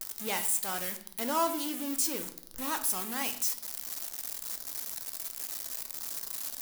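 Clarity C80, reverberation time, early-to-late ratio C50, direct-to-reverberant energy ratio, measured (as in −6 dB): 15.0 dB, 0.65 s, 11.5 dB, 7.0 dB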